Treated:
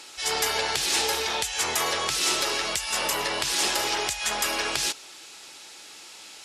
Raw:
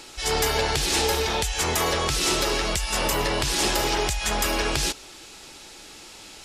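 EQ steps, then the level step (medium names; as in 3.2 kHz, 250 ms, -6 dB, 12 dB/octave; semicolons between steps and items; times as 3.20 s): high-pass 150 Hz 6 dB/octave; brick-wall FIR low-pass 13 kHz; bass shelf 490 Hz -10.5 dB; 0.0 dB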